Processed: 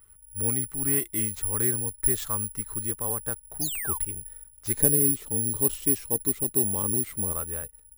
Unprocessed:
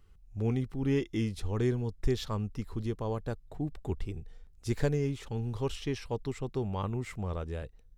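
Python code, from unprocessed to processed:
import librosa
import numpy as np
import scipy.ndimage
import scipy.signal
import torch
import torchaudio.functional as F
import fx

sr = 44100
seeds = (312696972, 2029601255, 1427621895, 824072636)

y = fx.peak_eq(x, sr, hz=fx.steps((0.0, 1500.0), (4.74, 290.0), (7.32, 1300.0)), db=9.5, octaves=1.4)
y = fx.spec_paint(y, sr, seeds[0], shape='fall', start_s=3.61, length_s=0.37, low_hz=890.0, high_hz=5300.0, level_db=-35.0)
y = (np.kron(y[::4], np.eye(4)[0]) * 4)[:len(y)]
y = y * 10.0 ** (-3.5 / 20.0)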